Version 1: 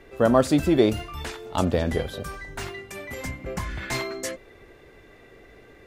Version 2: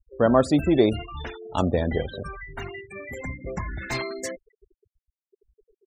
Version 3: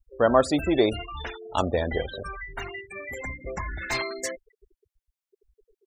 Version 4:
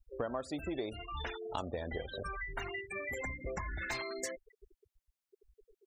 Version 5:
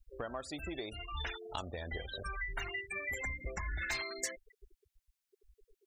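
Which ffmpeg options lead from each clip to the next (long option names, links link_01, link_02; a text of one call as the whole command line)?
ffmpeg -i in.wav -af "afftfilt=real='re*gte(hypot(re,im),0.0282)':imag='im*gte(hypot(re,im),0.0282)':win_size=1024:overlap=0.75" out.wav
ffmpeg -i in.wav -af "equalizer=frequency=160:width_type=o:width=2.3:gain=-10.5,volume=2.5dB" out.wav
ffmpeg -i in.wav -af "acompressor=threshold=-35dB:ratio=6,volume=-1dB" out.wav
ffmpeg -i in.wav -af "equalizer=frequency=125:width_type=o:width=1:gain=-6,equalizer=frequency=250:width_type=o:width=1:gain=-7,equalizer=frequency=500:width_type=o:width=1:gain=-7,equalizer=frequency=1000:width_type=o:width=1:gain=-5,volume=3.5dB" out.wav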